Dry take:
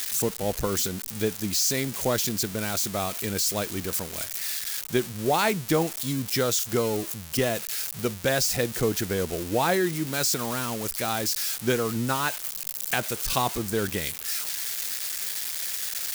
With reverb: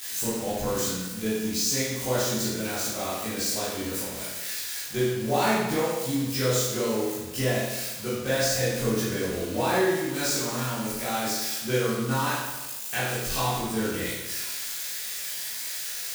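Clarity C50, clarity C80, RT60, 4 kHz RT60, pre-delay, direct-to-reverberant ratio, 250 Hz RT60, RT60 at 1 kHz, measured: −1.5 dB, 2.0 dB, 1.1 s, 1.0 s, 14 ms, −11.0 dB, 1.1 s, 1.1 s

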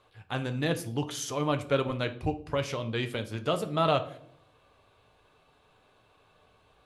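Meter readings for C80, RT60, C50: 18.5 dB, 0.65 s, 14.5 dB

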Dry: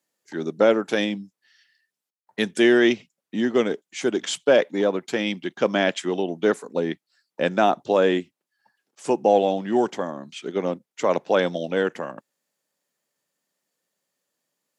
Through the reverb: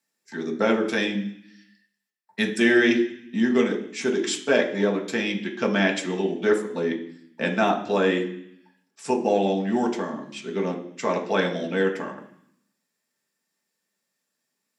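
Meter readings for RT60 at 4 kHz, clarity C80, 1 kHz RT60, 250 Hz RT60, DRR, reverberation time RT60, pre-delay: 0.85 s, 13.0 dB, 0.70 s, 0.95 s, 1.5 dB, 0.65 s, 3 ms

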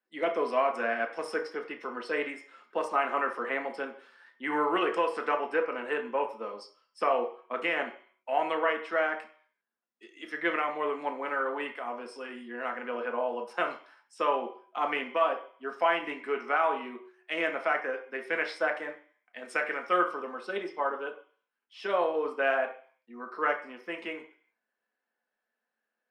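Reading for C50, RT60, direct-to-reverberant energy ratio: 10.0 dB, 0.50 s, 3.0 dB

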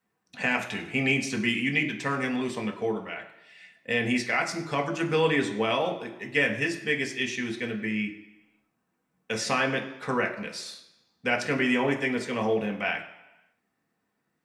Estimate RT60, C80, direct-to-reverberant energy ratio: 0.95 s, 12.5 dB, 1.5 dB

